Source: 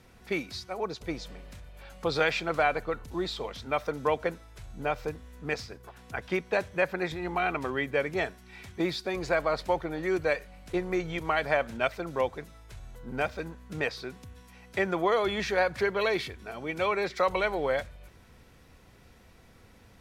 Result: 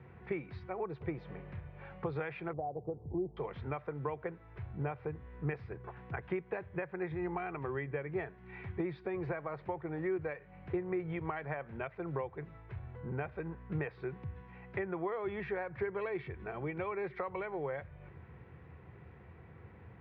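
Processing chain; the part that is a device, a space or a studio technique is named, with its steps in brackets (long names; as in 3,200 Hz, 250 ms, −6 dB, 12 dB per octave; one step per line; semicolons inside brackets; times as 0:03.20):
0:02.53–0:03.37: elliptic low-pass filter 770 Hz, stop band 60 dB
bass amplifier (downward compressor 5 to 1, threshold −37 dBFS, peak gain reduction 15.5 dB; loudspeaker in its box 68–2,100 Hz, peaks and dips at 84 Hz +6 dB, 140 Hz +9 dB, 250 Hz −8 dB, 370 Hz +4 dB, 610 Hz −5 dB, 1,400 Hz −4 dB)
level +2 dB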